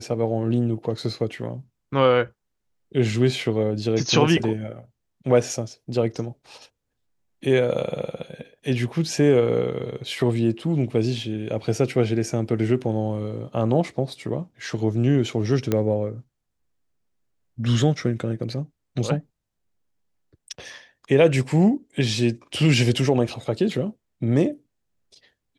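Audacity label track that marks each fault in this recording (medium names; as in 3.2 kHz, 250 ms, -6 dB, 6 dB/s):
15.720000	15.720000	pop -9 dBFS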